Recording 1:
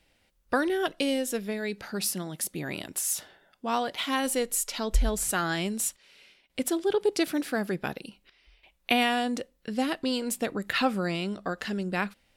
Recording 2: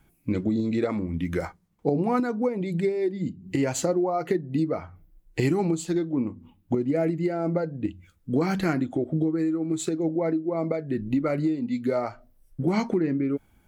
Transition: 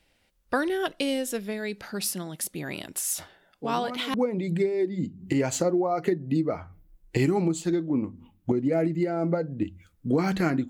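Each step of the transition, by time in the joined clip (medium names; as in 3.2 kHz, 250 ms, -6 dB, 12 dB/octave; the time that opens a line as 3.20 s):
recording 1
3.18 s: add recording 2 from 1.41 s 0.96 s -12.5 dB
4.14 s: go over to recording 2 from 2.37 s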